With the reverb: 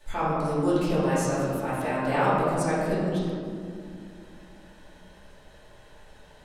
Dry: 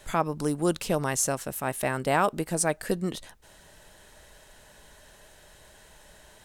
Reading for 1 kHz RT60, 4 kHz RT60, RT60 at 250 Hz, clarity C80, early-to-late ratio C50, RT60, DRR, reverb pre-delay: 2.0 s, 1.0 s, 3.8 s, 0.0 dB, -2.5 dB, 2.3 s, -12.5 dB, 3 ms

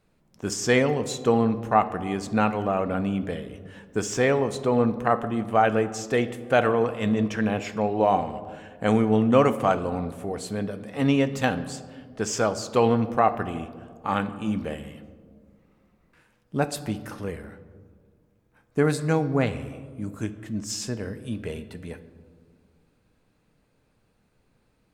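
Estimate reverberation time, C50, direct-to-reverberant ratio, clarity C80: 1.8 s, 13.5 dB, 11.0 dB, 15.0 dB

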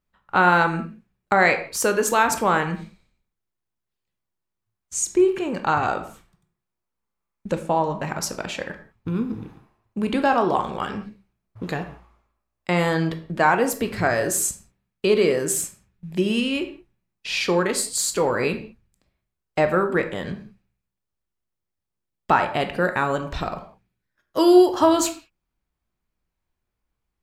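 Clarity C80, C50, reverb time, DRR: 14.0 dB, 11.0 dB, no single decay rate, 6.5 dB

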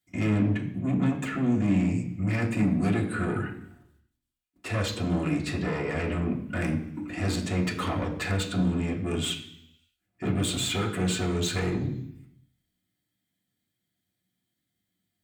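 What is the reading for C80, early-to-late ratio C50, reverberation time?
11.5 dB, 9.0 dB, 0.70 s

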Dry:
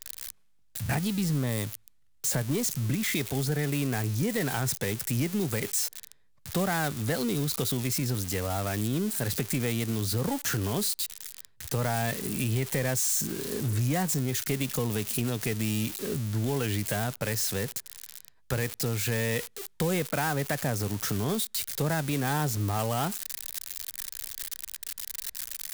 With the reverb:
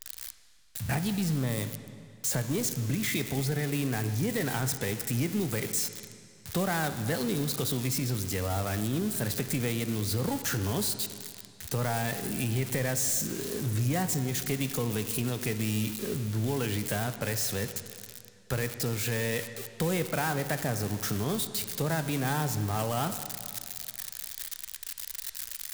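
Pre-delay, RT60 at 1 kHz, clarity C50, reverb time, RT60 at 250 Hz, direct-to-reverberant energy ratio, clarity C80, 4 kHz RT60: 7 ms, 2.4 s, 10.0 dB, 2.4 s, 2.4 s, 9.0 dB, 11.0 dB, 2.2 s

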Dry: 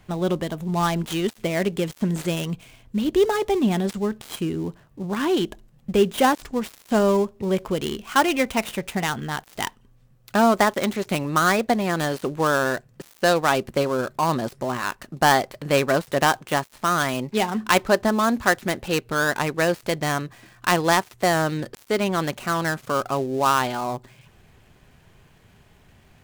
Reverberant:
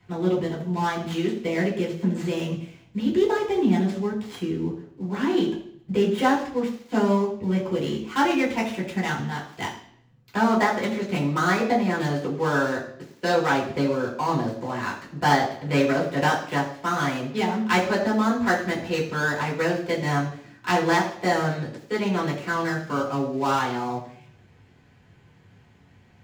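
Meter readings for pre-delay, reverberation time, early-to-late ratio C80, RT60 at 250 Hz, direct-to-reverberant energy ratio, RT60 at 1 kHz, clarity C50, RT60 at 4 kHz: 3 ms, 0.60 s, 10.0 dB, 0.65 s, -6.5 dB, 0.60 s, 7.5 dB, 0.65 s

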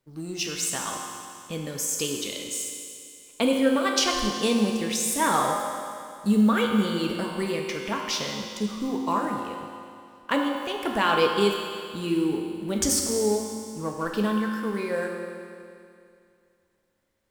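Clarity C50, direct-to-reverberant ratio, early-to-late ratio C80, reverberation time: 2.0 dB, 0.0 dB, 3.5 dB, 2.4 s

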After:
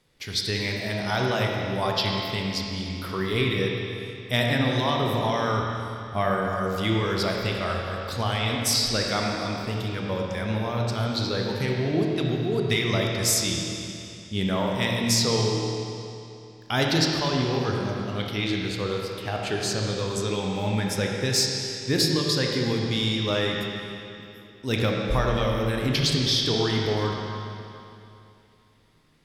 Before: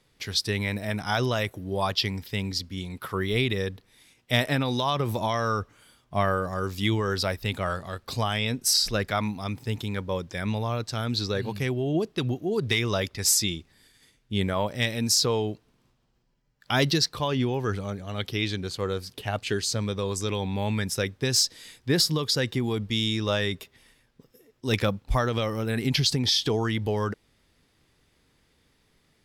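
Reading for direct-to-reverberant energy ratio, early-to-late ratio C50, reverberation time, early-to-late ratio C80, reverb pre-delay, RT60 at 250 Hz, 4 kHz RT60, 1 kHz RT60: -1.0 dB, 0.0 dB, 2.8 s, 1.0 dB, 25 ms, 2.8 s, 2.6 s, 2.8 s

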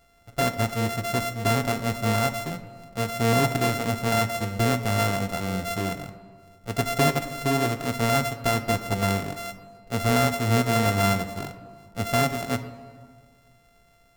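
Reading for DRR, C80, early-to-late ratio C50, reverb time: 9.5 dB, 13.0 dB, 12.0 dB, 1.8 s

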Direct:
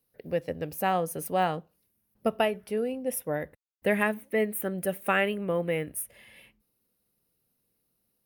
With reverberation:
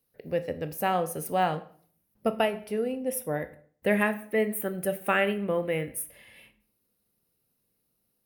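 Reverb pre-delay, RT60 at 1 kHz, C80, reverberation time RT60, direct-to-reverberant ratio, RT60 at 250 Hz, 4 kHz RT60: 16 ms, 0.50 s, 18.5 dB, 0.50 s, 10.5 dB, 0.60 s, 0.40 s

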